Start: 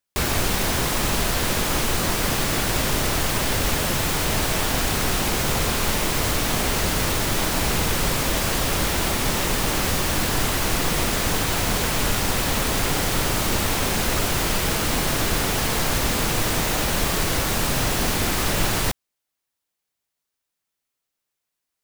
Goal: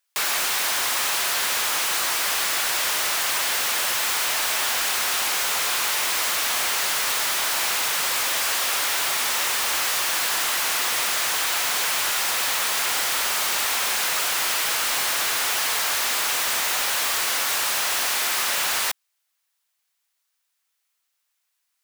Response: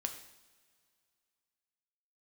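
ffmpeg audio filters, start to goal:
-filter_complex "[0:a]highpass=1k,asplit=2[a][b];[b]alimiter=limit=-20dB:level=0:latency=1,volume=-1dB[c];[a][c]amix=inputs=2:normalize=0,asoftclip=type=tanh:threshold=-20dB,volume=1.5dB"

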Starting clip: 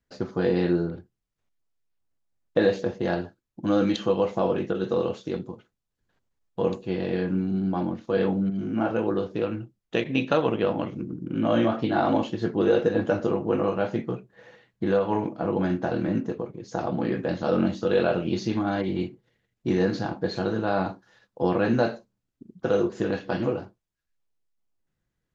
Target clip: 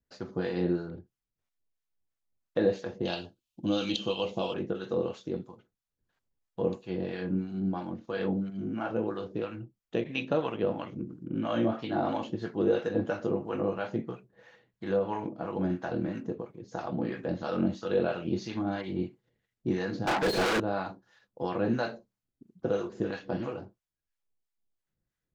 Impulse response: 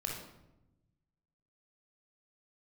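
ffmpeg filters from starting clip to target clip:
-filter_complex "[0:a]asettb=1/sr,asplit=3[a][b][c];[a]atrim=end=3.054[d];[b]atrim=start=3.05:end=4.54,asetpts=PTS-STARTPTS,afade=t=in:d=0.004:c=qsin,afade=t=out:st=1.486:d=0.004:c=qsin,highshelf=f=2.3k:t=q:w=3:g=7.5[e];[c]atrim=start=4.536[f];[d][e]acrossfade=d=0.004:c1=hsin:c2=qsin[g];[g][f]acrossfade=d=0.004:c1=qsin:c2=hsin,asettb=1/sr,asplit=3[h][i][j];[h]atrim=end=20.074[k];[i]atrim=start=20.07:end=20.6,asetpts=PTS-STARTPTS,afade=t=in:d=0.004:c=qsin,afade=t=out:st=0.526:d=0.004:c=qsin,asplit=2[l][m];[m]highpass=f=720:p=1,volume=40dB,asoftclip=type=tanh:threshold=-12.5dB[n];[l][n]amix=inputs=2:normalize=0,lowpass=f=4k:p=1,volume=-6dB[o];[j]atrim=start=20.596[p];[k][o]acrossfade=d=0.004:c1=hsin:c2=qsin[q];[q][p]acrossfade=d=0.004:c1=qsin:c2=hsin,acrossover=split=740[r][s];[r]aeval=exprs='val(0)*(1-0.7/2+0.7/2*cos(2*PI*3*n/s))':c=same[t];[s]aeval=exprs='val(0)*(1-0.7/2-0.7/2*cos(2*PI*3*n/s))':c=same[u];[t][u]amix=inputs=2:normalize=0,volume=-3dB"

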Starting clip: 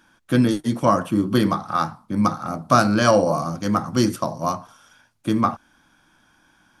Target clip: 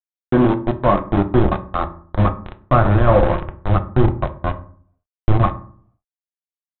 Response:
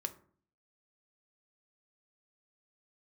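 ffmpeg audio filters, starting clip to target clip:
-filter_complex "[0:a]aresample=8000,aeval=exprs='val(0)*gte(abs(val(0)),0.158)':c=same,aresample=44100,asubboost=boost=9.5:cutoff=80,acrossover=split=1300[a][b];[a]acontrast=86[c];[b]alimiter=limit=-23dB:level=0:latency=1:release=279[d];[c][d]amix=inputs=2:normalize=0,lowpass=f=2.1k:p=1[e];[1:a]atrim=start_sample=2205,asetrate=43218,aresample=44100[f];[e][f]afir=irnorm=-1:irlink=0"

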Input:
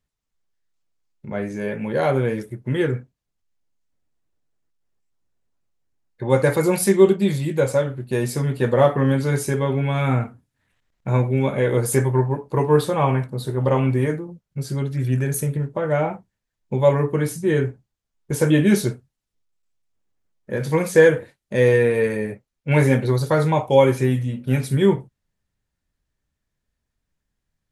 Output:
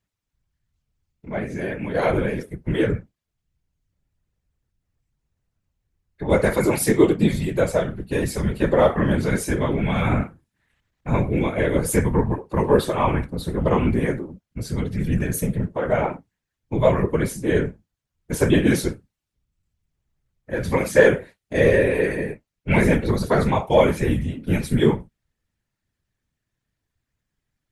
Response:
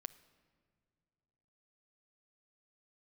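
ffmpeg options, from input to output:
-af "equalizer=f=2.2k:t=o:w=1.5:g=3,afftfilt=real='hypot(re,im)*cos(2*PI*random(0))':imag='hypot(re,im)*sin(2*PI*random(1))':win_size=512:overlap=0.75,acontrast=24"

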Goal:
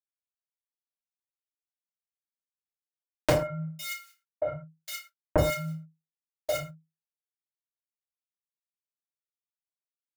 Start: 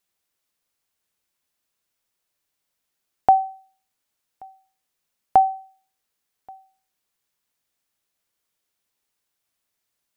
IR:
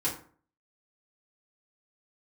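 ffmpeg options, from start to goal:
-filter_complex "[0:a]agate=range=-28dB:threshold=-44dB:ratio=16:detection=peak,asubboost=boost=9.5:cutoff=200,dynaudnorm=f=130:g=9:m=13.5dB,alimiter=limit=-5.5dB:level=0:latency=1:release=186,acompressor=threshold=-28dB:ratio=12,acrusher=bits=7:dc=4:mix=0:aa=0.000001,afreqshift=-160,asettb=1/sr,asplit=3[a][b][c];[a]atrim=end=3.334[d];[b]atrim=start=3.33:end=5.38,asetpts=PTS-STARTPTS,afade=t=in:d=0.004:c=qsin,afade=t=out:st=2.046:d=0.004:c=qsin,acrossover=split=1600[e][f];[f]adelay=460[g];[e][g]amix=inputs=2:normalize=0,atrim=end_sample=90405[h];[c]atrim=start=5.376[i];[d][h]acrossfade=d=0.004:c1=hsin:c2=qsin[j];[j][i]acrossfade=d=0.004:c1=qsin:c2=hsin[k];[1:a]atrim=start_sample=2205,afade=t=out:st=0.19:d=0.01,atrim=end_sample=8820[l];[k][l]afir=irnorm=-1:irlink=0,volume=4.5dB"

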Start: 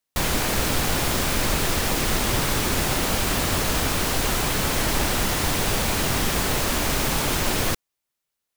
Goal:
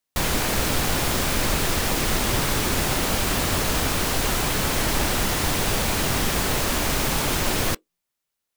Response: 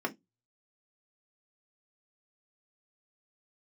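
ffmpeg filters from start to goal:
-filter_complex "[0:a]asplit=2[a][b];[1:a]atrim=start_sample=2205,asetrate=66150,aresample=44100,adelay=17[c];[b][c]afir=irnorm=-1:irlink=0,volume=-26dB[d];[a][d]amix=inputs=2:normalize=0"

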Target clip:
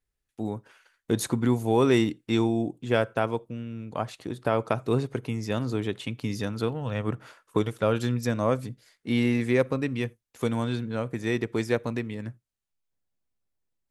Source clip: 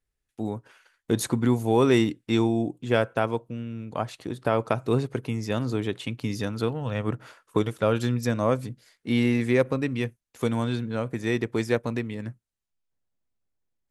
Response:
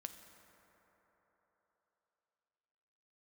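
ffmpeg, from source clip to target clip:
-filter_complex "[0:a]asplit=2[a][b];[1:a]atrim=start_sample=2205,atrim=end_sample=3969[c];[b][c]afir=irnorm=-1:irlink=0,volume=-7.5dB[d];[a][d]amix=inputs=2:normalize=0,volume=-3dB"

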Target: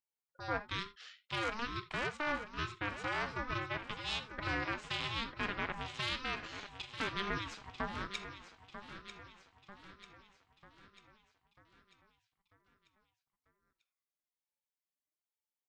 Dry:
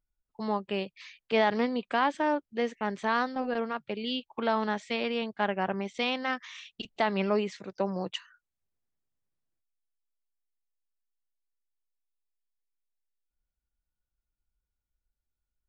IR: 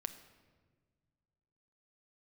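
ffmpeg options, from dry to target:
-filter_complex "[0:a]aeval=exprs='0.266*(cos(1*acos(clip(val(0)/0.266,-1,1)))-cos(1*PI/2))+0.075*(cos(4*acos(clip(val(0)/0.266,-1,1)))-cos(4*PI/2))':c=same,highpass=f=750:p=1,alimiter=limit=-18.5dB:level=0:latency=1:release=123,afreqshift=120,aecho=1:1:943|1886|2829|3772|4715|5658:0.282|0.147|0.0762|0.0396|0.0206|0.0107[a];[1:a]atrim=start_sample=2205,atrim=end_sample=3969[b];[a][b]afir=irnorm=-1:irlink=0,aeval=exprs='val(0)*sin(2*PI*570*n/s+570*0.25/1.1*sin(2*PI*1.1*n/s))':c=same"

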